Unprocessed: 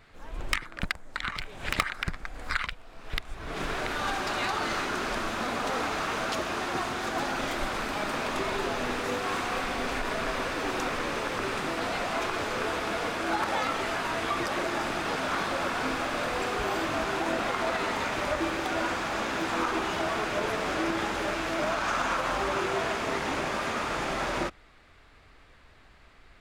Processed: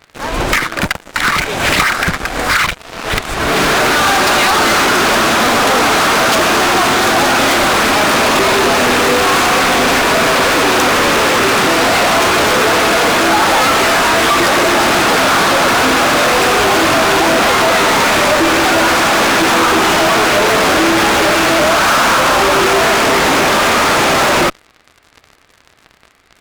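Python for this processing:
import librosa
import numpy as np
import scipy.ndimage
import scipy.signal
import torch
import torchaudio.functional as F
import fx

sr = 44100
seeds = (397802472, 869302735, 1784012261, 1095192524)

p1 = fx.highpass(x, sr, hz=160.0, slope=6)
p2 = fx.fuzz(p1, sr, gain_db=43.0, gate_db=-51.0)
p3 = p1 + (p2 * librosa.db_to_amplitude(-3.5))
y = p3 * librosa.db_to_amplitude(5.0)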